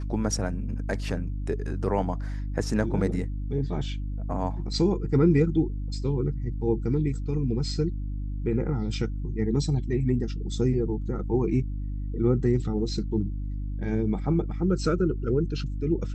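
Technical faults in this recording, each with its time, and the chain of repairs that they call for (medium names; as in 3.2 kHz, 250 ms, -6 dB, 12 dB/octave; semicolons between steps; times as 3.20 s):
hum 50 Hz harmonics 6 -31 dBFS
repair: de-hum 50 Hz, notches 6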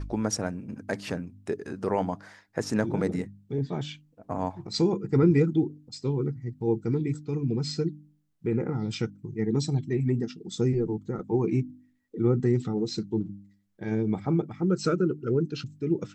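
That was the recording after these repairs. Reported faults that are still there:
nothing left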